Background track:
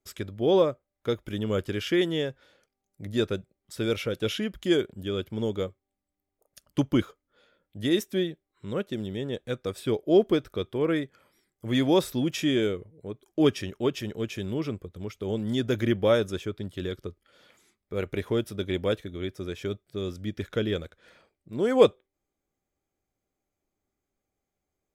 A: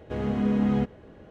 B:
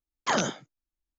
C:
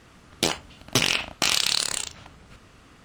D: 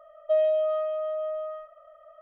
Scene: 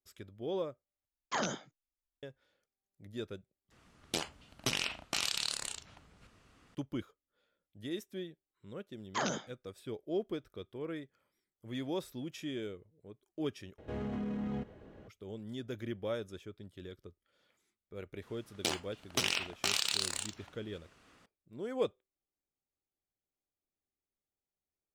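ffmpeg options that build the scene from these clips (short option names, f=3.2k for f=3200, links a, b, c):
-filter_complex "[2:a]asplit=2[a][b];[3:a]asplit=2[c][d];[0:a]volume=-15dB[e];[c]aresample=32000,aresample=44100[f];[1:a]alimiter=level_in=1.5dB:limit=-24dB:level=0:latency=1:release=39,volume=-1.5dB[g];[d]lowshelf=f=150:g=-9.5[h];[e]asplit=4[i][j][k][l];[i]atrim=end=1.054[m];[a]atrim=end=1.18,asetpts=PTS-STARTPTS,volume=-8.5dB[n];[j]atrim=start=2.226:end=3.714[o];[f]atrim=end=3.04,asetpts=PTS-STARTPTS,volume=-12dB[p];[k]atrim=start=6.746:end=13.784[q];[g]atrim=end=1.3,asetpts=PTS-STARTPTS,volume=-5.5dB[r];[l]atrim=start=15.076[s];[b]atrim=end=1.18,asetpts=PTS-STARTPTS,volume=-8.5dB,afade=t=in:d=0.004:c=hsin,afade=t=out:st=1.176:d=0.004:c=hsin,adelay=8880[t];[h]atrim=end=3.04,asetpts=PTS-STARTPTS,volume=-10dB,afade=t=in:d=0.004:c=hsin,afade=t=out:st=3.036:d=0.004:c=hsin,adelay=18220[u];[m][n]acrossfade=d=0.004:c1=hsin:c2=hsin[v];[v][o]acrossfade=d=0.004:c1=hsin:c2=hsin[w];[w][p]acrossfade=d=0.004:c1=hsin:c2=hsin[x];[x][q]acrossfade=d=0.004:c1=hsin:c2=hsin[y];[y][r]acrossfade=d=0.004:c1=hsin:c2=hsin[z];[z][s]acrossfade=d=0.004:c1=hsin:c2=hsin[aa];[aa][t][u]amix=inputs=3:normalize=0"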